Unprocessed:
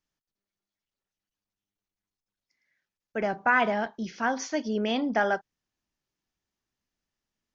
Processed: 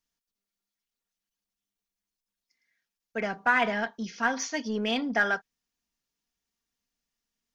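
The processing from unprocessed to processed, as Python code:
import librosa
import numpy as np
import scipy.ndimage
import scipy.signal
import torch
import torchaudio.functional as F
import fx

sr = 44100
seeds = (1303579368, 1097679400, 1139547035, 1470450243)

p1 = fx.high_shelf(x, sr, hz=2800.0, db=7.5)
p2 = p1 + 0.48 * np.pad(p1, (int(4.3 * sr / 1000.0), 0))[:len(p1)]
p3 = np.clip(p2, -10.0 ** (-24.0 / 20.0), 10.0 ** (-24.0 / 20.0))
p4 = p2 + F.gain(torch.from_numpy(p3), -8.0).numpy()
p5 = fx.dynamic_eq(p4, sr, hz=1900.0, q=1.0, threshold_db=-34.0, ratio=4.0, max_db=6)
y = F.gain(torch.from_numpy(p5), -7.0).numpy()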